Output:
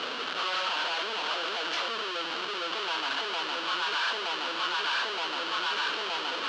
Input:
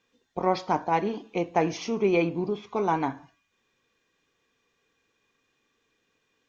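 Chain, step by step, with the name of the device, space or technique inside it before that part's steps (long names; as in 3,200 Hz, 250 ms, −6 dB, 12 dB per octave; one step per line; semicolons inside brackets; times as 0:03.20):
0:00.90–0:01.86: high-pass filter 240 Hz 6 dB per octave
low-pass that shuts in the quiet parts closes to 370 Hz, open at −22 dBFS
high shelf with overshoot 2,200 Hz −10.5 dB, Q 3
delay that swaps between a low-pass and a high-pass 460 ms, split 980 Hz, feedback 52%, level −10 dB
home computer beeper (sign of each sample alone; loudspeaker in its box 690–5,100 Hz, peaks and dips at 790 Hz −6 dB, 1,400 Hz +6 dB, 2,000 Hz −5 dB, 3,000 Hz +10 dB, 4,300 Hz +5 dB)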